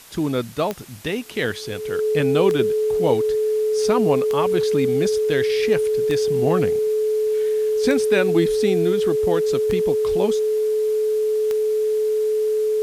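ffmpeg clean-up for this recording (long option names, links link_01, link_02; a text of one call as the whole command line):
ffmpeg -i in.wav -af "adeclick=threshold=4,bandreject=frequency=430:width=30,afwtdn=0.0063" out.wav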